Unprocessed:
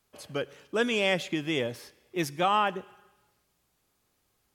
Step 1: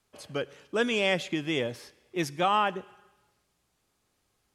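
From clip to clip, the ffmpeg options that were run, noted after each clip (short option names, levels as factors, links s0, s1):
-af "lowpass=11000"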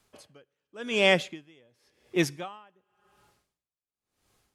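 -af "aeval=exprs='val(0)*pow(10,-36*(0.5-0.5*cos(2*PI*0.92*n/s))/20)':c=same,volume=1.88"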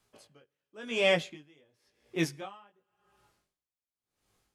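-af "flanger=delay=17:depth=3.7:speed=1,volume=0.841"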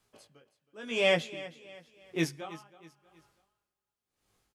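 -af "aecho=1:1:320|640|960:0.141|0.0551|0.0215"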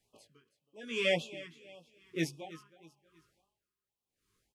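-af "afftfilt=real='re*(1-between(b*sr/1024,620*pow(1800/620,0.5+0.5*sin(2*PI*1.8*pts/sr))/1.41,620*pow(1800/620,0.5+0.5*sin(2*PI*1.8*pts/sr))*1.41))':imag='im*(1-between(b*sr/1024,620*pow(1800/620,0.5+0.5*sin(2*PI*1.8*pts/sr))/1.41,620*pow(1800/620,0.5+0.5*sin(2*PI*1.8*pts/sr))*1.41))':win_size=1024:overlap=0.75,volume=0.668"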